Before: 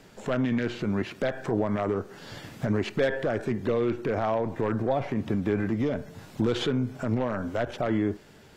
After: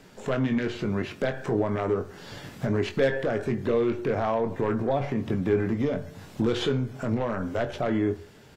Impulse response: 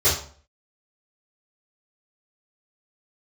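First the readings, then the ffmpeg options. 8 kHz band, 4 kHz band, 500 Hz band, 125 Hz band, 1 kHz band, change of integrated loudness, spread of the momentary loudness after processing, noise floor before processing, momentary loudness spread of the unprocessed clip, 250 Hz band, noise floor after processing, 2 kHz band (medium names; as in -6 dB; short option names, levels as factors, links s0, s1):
no reading, +0.5 dB, +1.5 dB, +1.0 dB, +0.5 dB, +1.0 dB, 5 LU, -52 dBFS, 5 LU, 0.0 dB, -51 dBFS, +0.5 dB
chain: -filter_complex "[0:a]asplit=2[s0][s1];[s1]adelay=22,volume=0.398[s2];[s0][s2]amix=inputs=2:normalize=0,asplit=2[s3][s4];[1:a]atrim=start_sample=2205[s5];[s4][s5]afir=irnorm=-1:irlink=0,volume=0.0282[s6];[s3][s6]amix=inputs=2:normalize=0"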